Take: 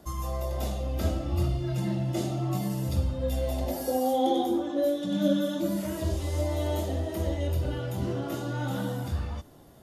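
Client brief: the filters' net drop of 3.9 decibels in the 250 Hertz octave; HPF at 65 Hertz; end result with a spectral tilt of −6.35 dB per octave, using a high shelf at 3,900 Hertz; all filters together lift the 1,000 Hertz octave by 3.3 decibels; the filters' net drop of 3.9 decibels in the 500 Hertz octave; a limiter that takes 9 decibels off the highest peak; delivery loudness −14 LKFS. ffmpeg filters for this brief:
ffmpeg -i in.wav -af "highpass=65,equalizer=frequency=250:width_type=o:gain=-3.5,equalizer=frequency=500:width_type=o:gain=-6.5,equalizer=frequency=1000:width_type=o:gain=8.5,highshelf=frequency=3900:gain=-5.5,volume=19.5dB,alimiter=limit=-4.5dB:level=0:latency=1" out.wav

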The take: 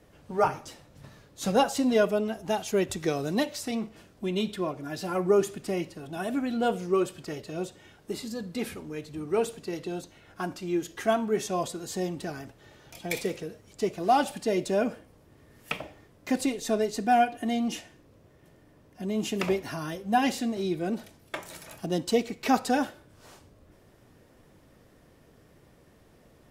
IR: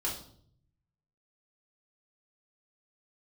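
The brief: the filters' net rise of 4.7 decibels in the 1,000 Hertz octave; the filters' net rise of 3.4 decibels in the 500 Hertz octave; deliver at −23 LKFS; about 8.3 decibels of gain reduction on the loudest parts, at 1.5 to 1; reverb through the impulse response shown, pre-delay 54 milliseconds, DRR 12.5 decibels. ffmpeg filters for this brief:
-filter_complex "[0:a]equalizer=frequency=500:width_type=o:gain=3,equalizer=frequency=1000:width_type=o:gain=5.5,acompressor=threshold=-37dB:ratio=1.5,asplit=2[link_01][link_02];[1:a]atrim=start_sample=2205,adelay=54[link_03];[link_02][link_03]afir=irnorm=-1:irlink=0,volume=-16.5dB[link_04];[link_01][link_04]amix=inputs=2:normalize=0,volume=9.5dB"

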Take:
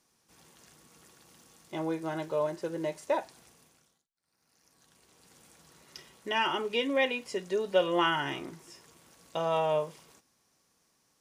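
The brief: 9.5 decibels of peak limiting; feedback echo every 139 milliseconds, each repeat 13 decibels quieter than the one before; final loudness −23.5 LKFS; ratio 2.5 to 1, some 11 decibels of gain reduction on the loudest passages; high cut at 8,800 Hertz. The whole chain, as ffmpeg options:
ffmpeg -i in.wav -af "lowpass=8800,acompressor=threshold=-36dB:ratio=2.5,alimiter=level_in=9dB:limit=-24dB:level=0:latency=1,volume=-9dB,aecho=1:1:139|278|417:0.224|0.0493|0.0108,volume=19.5dB" out.wav

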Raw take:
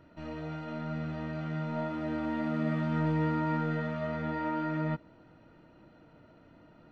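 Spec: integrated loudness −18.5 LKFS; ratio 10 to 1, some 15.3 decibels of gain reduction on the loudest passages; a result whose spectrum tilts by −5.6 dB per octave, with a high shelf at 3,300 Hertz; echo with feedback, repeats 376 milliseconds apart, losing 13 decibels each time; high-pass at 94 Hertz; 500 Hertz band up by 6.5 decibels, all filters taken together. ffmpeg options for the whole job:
ffmpeg -i in.wav -af "highpass=94,equalizer=frequency=500:width_type=o:gain=8.5,highshelf=frequency=3300:gain=-6.5,acompressor=threshold=-40dB:ratio=10,aecho=1:1:376|752|1128:0.224|0.0493|0.0108,volume=25.5dB" out.wav

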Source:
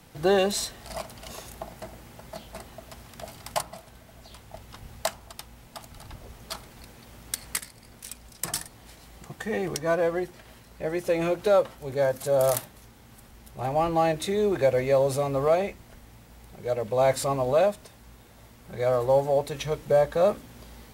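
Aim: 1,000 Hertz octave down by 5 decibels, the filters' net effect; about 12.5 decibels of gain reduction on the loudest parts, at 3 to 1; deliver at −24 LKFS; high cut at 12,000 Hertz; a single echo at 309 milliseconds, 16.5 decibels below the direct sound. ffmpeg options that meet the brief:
ffmpeg -i in.wav -af "lowpass=12000,equalizer=frequency=1000:width_type=o:gain=-7.5,acompressor=threshold=-36dB:ratio=3,aecho=1:1:309:0.15,volume=15dB" out.wav

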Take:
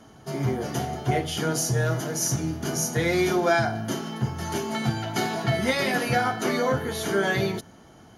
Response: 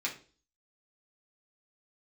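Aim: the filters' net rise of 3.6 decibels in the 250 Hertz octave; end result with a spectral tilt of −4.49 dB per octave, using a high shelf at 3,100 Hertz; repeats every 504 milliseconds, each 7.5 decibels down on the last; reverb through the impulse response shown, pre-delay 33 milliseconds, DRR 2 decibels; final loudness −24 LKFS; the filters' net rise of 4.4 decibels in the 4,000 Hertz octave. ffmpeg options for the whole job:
-filter_complex "[0:a]equalizer=frequency=250:width_type=o:gain=5,highshelf=frequency=3100:gain=-3.5,equalizer=frequency=4000:width_type=o:gain=8.5,aecho=1:1:504|1008|1512|2016|2520:0.422|0.177|0.0744|0.0312|0.0131,asplit=2[link_01][link_02];[1:a]atrim=start_sample=2205,adelay=33[link_03];[link_02][link_03]afir=irnorm=-1:irlink=0,volume=-6.5dB[link_04];[link_01][link_04]amix=inputs=2:normalize=0,volume=-2.5dB"

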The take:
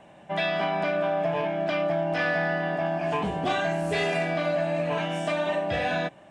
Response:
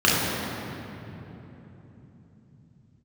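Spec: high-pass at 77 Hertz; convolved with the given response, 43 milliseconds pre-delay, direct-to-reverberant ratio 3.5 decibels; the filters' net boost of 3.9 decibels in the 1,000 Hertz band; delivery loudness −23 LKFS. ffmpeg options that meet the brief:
-filter_complex "[0:a]highpass=77,equalizer=frequency=1000:width_type=o:gain=5.5,asplit=2[link_01][link_02];[1:a]atrim=start_sample=2205,adelay=43[link_03];[link_02][link_03]afir=irnorm=-1:irlink=0,volume=-24.5dB[link_04];[link_01][link_04]amix=inputs=2:normalize=0"

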